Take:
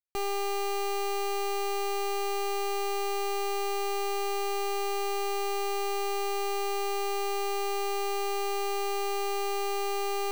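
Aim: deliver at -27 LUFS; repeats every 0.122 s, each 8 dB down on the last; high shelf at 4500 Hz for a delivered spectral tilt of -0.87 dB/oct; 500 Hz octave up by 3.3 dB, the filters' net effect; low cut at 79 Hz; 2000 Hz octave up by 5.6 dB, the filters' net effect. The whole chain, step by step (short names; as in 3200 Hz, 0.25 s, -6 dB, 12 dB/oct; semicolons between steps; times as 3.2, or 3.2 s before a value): HPF 79 Hz; bell 500 Hz +4.5 dB; bell 2000 Hz +8.5 dB; high shelf 4500 Hz -6.5 dB; feedback echo 0.122 s, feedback 40%, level -8 dB; gain +1.5 dB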